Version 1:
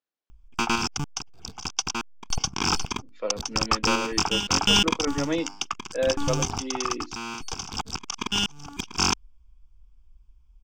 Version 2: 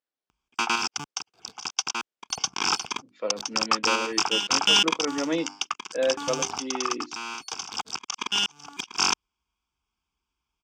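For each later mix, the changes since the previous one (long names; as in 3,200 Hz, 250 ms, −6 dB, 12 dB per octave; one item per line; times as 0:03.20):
background: add meter weighting curve A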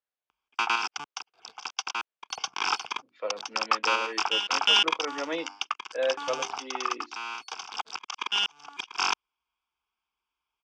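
master: add three-way crossover with the lows and the highs turned down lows −16 dB, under 440 Hz, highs −15 dB, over 4,400 Hz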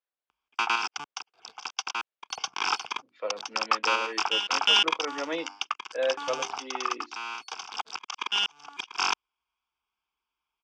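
nothing changed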